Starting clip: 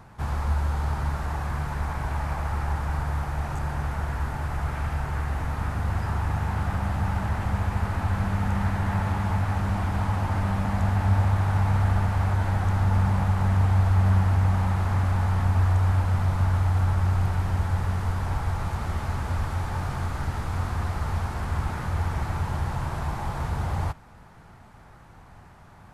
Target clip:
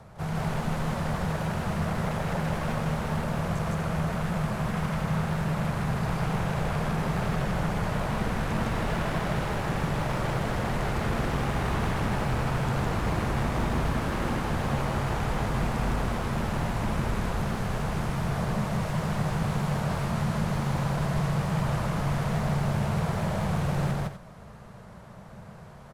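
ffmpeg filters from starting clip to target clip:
ffmpeg -i in.wav -af "aeval=exprs='0.0531*(abs(mod(val(0)/0.0531+3,4)-2)-1)':channel_layout=same,aecho=1:1:157.4|247.8:1|0.316,afreqshift=-230" out.wav

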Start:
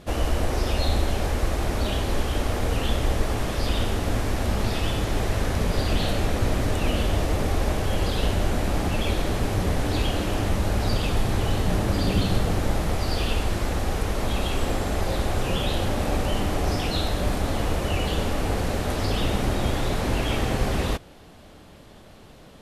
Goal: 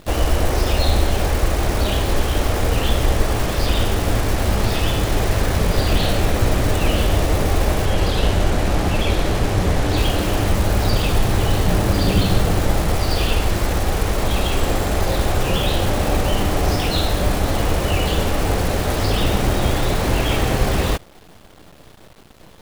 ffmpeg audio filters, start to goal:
ffmpeg -i in.wav -filter_complex "[0:a]equalizer=frequency=240:width=5:gain=-4,acrusher=bits=7:dc=4:mix=0:aa=0.000001,asettb=1/sr,asplit=3[link_01][link_02][link_03];[link_01]atrim=end=7.854[link_04];[link_02]atrim=start=7.85:end=9.97,asetpts=PTS-STARTPTS,afade=type=in:duration=0.004:curve=qsin,afade=type=out:start_time=2.116:duration=0.004:curve=qsin,highshelf=frequency=12000:gain=-10[link_05];[link_03]atrim=start=9.966[link_06];[link_04][link_05]acrossfade=duration=0.004:curve1=hsin:curve2=qsin[link_07];[link_07][link_06]acrossfade=duration=0.004:curve1=qsin:curve2=hsin,volume=6dB" out.wav

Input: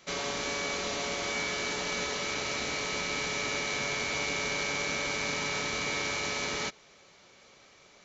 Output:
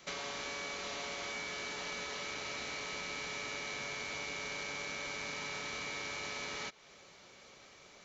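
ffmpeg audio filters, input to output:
ffmpeg -i in.wav -filter_complex "[0:a]acrossover=split=630|5100[link_01][link_02][link_03];[link_01]acompressor=threshold=-51dB:ratio=4[link_04];[link_02]acompressor=threshold=-41dB:ratio=4[link_05];[link_03]acompressor=threshold=-55dB:ratio=4[link_06];[link_04][link_05][link_06]amix=inputs=3:normalize=0" out.wav

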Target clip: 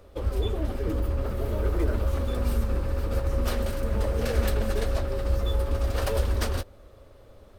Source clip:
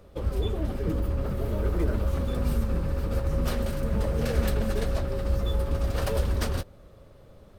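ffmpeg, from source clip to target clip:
ffmpeg -i in.wav -af "equalizer=frequency=160:width_type=o:width=0.59:gain=-13,volume=1.5dB" out.wav

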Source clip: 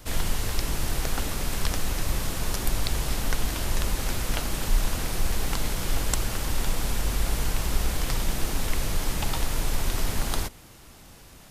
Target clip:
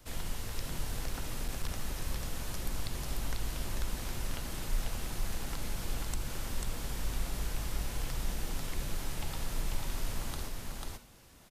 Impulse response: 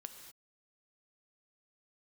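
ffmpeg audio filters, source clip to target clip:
-filter_complex "[0:a]aecho=1:1:492:0.668[link_01];[1:a]atrim=start_sample=2205,atrim=end_sample=3969[link_02];[link_01][link_02]afir=irnorm=-1:irlink=0,acrossover=split=250[link_03][link_04];[link_04]acompressor=threshold=-36dB:ratio=2[link_05];[link_03][link_05]amix=inputs=2:normalize=0,asettb=1/sr,asplit=3[link_06][link_07][link_08];[link_06]atrim=end=0.844[link_09];[link_07]atrim=start=0.84:end=1.78,asetpts=PTS-STARTPTS,afade=type=in:duration=0.004:curve=qsin,afade=type=out:start_time=0.936:duration=0.004:curve=qsin,volume=21dB,asoftclip=hard,volume=-21dB[link_10];[link_08]atrim=start=1.776[link_11];[link_09][link_10]acrossfade=duration=0.004:curve1=hsin:curve2=qsin[link_12];[link_12][link_11]acrossfade=duration=0.004:curve1=qsin:curve2=hsin,volume=-5dB"

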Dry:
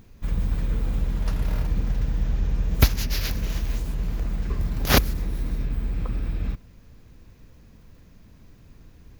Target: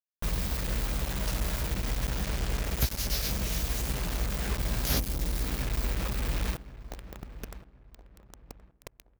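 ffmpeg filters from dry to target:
ffmpeg -i in.wav -filter_complex "[0:a]adynamicequalizer=threshold=0.002:dfrequency=610:dqfactor=2.6:tfrequency=610:tqfactor=2.6:attack=5:release=100:ratio=0.375:range=2.5:mode=boostabove:tftype=bell,acrossover=split=310|1200|4200[link_01][link_02][link_03][link_04];[link_01]acompressor=threshold=-34dB:ratio=4[link_05];[link_02]acompressor=threshold=-51dB:ratio=4[link_06];[link_03]acompressor=threshold=-50dB:ratio=4[link_07];[link_04]acompressor=threshold=-37dB:ratio=4[link_08];[link_05][link_06][link_07][link_08]amix=inputs=4:normalize=0,flanger=delay=15:depth=2.4:speed=1.8,acrusher=bits=6:mix=0:aa=0.000001,asplit=2[link_09][link_10];[link_10]adelay=1072,lowpass=frequency=1700:poles=1,volume=-15dB,asplit=2[link_11][link_12];[link_12]adelay=1072,lowpass=frequency=1700:poles=1,volume=0.33,asplit=2[link_13][link_14];[link_14]adelay=1072,lowpass=frequency=1700:poles=1,volume=0.33[link_15];[link_09][link_11][link_13][link_15]amix=inputs=4:normalize=0,volume=8dB" out.wav

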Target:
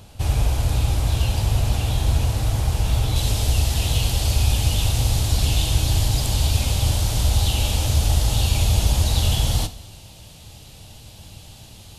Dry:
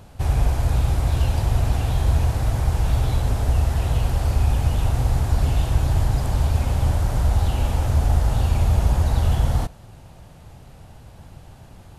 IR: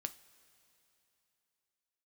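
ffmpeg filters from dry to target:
-filter_complex "[0:a]asetnsamples=nb_out_samples=441:pad=0,asendcmd='3.16 highshelf g 12',highshelf=frequency=2300:width_type=q:width=1.5:gain=6[link_01];[1:a]atrim=start_sample=2205,afade=type=out:start_time=0.42:duration=0.01,atrim=end_sample=18963[link_02];[link_01][link_02]afir=irnorm=-1:irlink=0,volume=1.5dB"

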